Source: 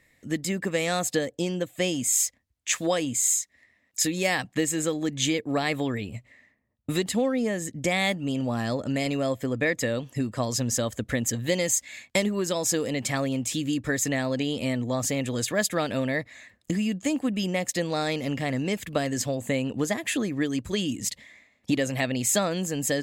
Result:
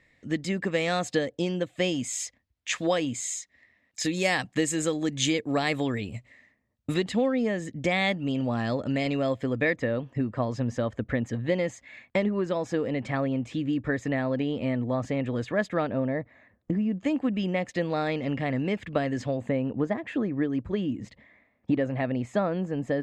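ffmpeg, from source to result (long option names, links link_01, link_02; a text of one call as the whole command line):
ffmpeg -i in.wav -af "asetnsamples=nb_out_samples=441:pad=0,asendcmd='4.05 lowpass f 8100;6.94 lowpass f 3900;9.76 lowpass f 1900;15.87 lowpass f 1100;16.98 lowpass f 2500;19.49 lowpass f 1400',lowpass=4500" out.wav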